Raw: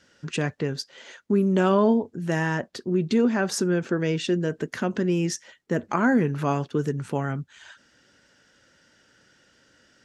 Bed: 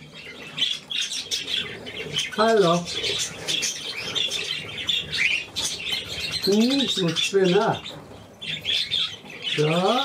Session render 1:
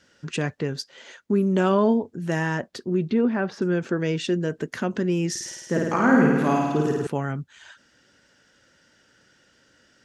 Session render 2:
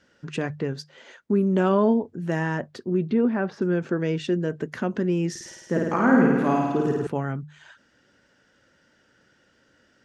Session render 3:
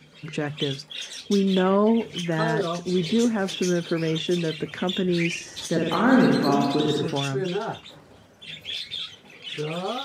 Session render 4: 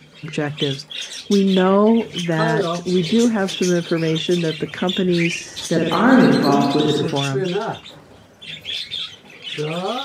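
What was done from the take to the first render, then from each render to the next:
3.10–3.62 s: distance through air 280 m; 5.30–7.07 s: flutter echo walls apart 9 m, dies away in 1.4 s
treble shelf 3 kHz -9 dB; hum notches 50/100/150 Hz
add bed -8.5 dB
trim +5.5 dB; peak limiter -1 dBFS, peak gain reduction 1 dB

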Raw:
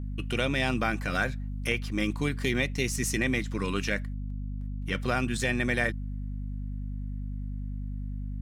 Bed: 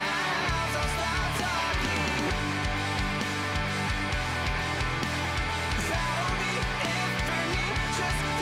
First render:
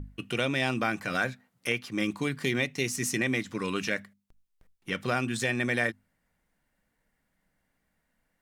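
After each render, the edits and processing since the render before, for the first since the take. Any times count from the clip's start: hum notches 50/100/150/200/250 Hz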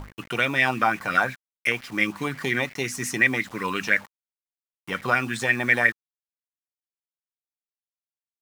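bit crusher 8-bit; sweeping bell 5.7 Hz 820–2200 Hz +15 dB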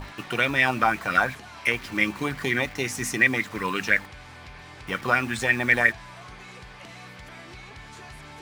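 add bed -15 dB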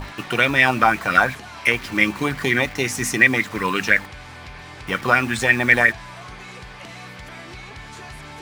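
trim +5.5 dB; peak limiter -1 dBFS, peak gain reduction 3 dB

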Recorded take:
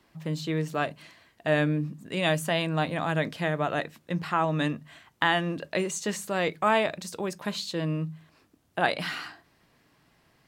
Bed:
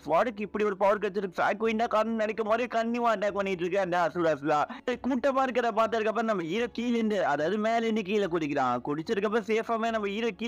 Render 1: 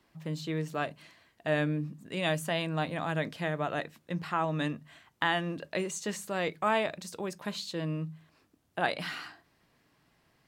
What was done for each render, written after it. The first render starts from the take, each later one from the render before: trim -4.5 dB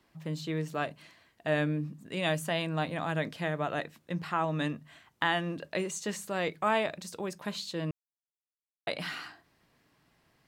7.91–8.87 s: mute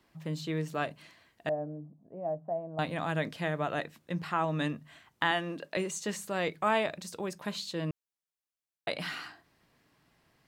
1.49–2.79 s: four-pole ladder low-pass 760 Hz, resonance 70%; 5.31–5.77 s: high-pass 210 Hz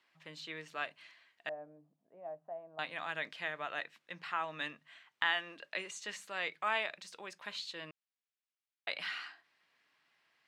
band-pass filter 2.4 kHz, Q 0.92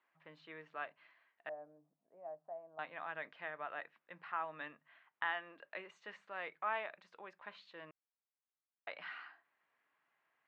low-pass 1.4 kHz 12 dB/octave; bass shelf 430 Hz -9.5 dB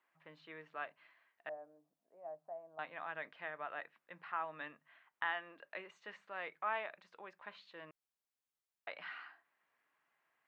1.57–2.24 s: peaking EQ 120 Hz -9.5 dB 1.4 oct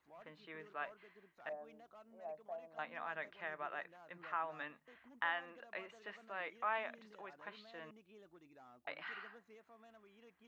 add bed -34 dB

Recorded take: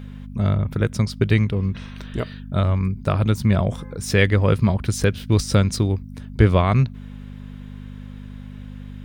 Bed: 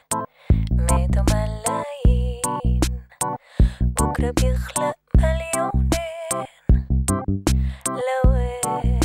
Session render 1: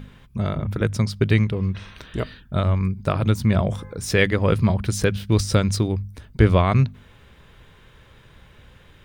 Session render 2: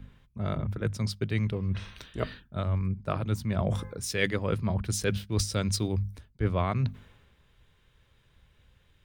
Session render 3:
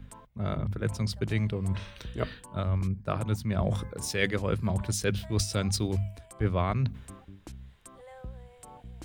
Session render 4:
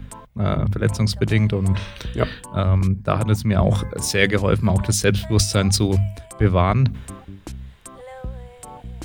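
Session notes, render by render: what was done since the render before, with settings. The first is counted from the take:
de-hum 50 Hz, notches 5
reverse; compression 5:1, threshold -26 dBFS, peak gain reduction 15 dB; reverse; three bands expanded up and down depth 70%
add bed -26 dB
trim +10.5 dB; peak limiter -2 dBFS, peak gain reduction 1.5 dB

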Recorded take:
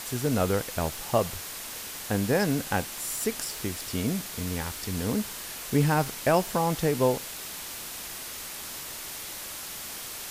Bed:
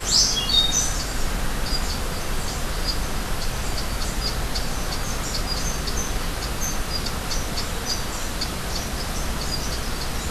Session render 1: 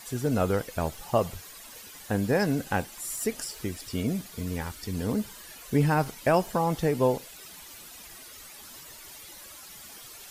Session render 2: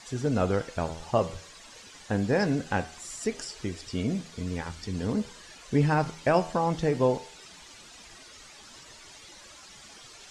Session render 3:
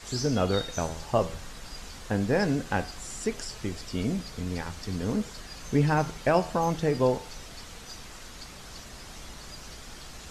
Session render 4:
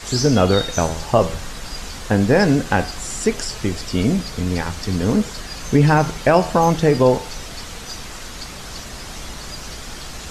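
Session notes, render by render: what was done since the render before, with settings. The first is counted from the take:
noise reduction 12 dB, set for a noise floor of -39 dBFS
low-pass 7.4 kHz 24 dB/octave; de-hum 80.95 Hz, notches 38
add bed -18.5 dB
trim +11 dB; peak limiter -3 dBFS, peak gain reduction 3 dB

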